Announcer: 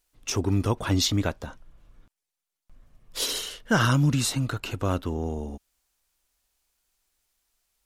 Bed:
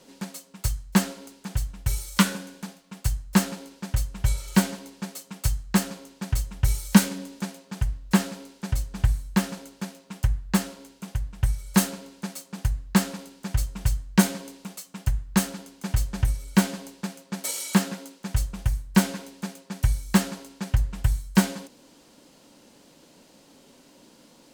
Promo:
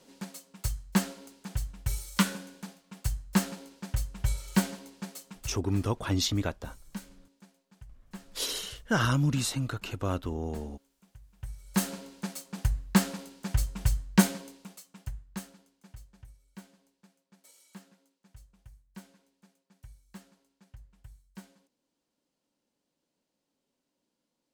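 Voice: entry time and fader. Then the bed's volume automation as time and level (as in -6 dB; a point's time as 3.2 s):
5.20 s, -4.5 dB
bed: 5.29 s -5.5 dB
5.66 s -24.5 dB
11.21 s -24.5 dB
11.95 s -2.5 dB
14.19 s -2.5 dB
16.26 s -28.5 dB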